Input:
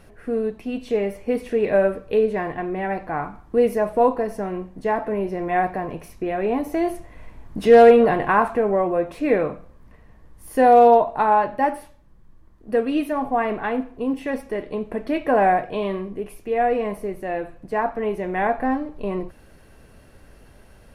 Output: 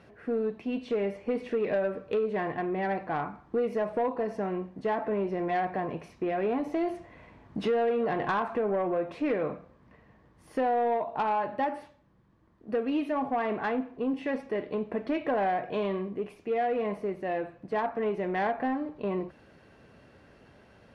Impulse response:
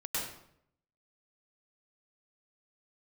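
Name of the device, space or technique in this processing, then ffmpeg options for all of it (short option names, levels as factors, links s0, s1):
AM radio: -af "highpass=110,lowpass=4500,acompressor=threshold=0.1:ratio=5,asoftclip=type=tanh:threshold=0.141,volume=0.708"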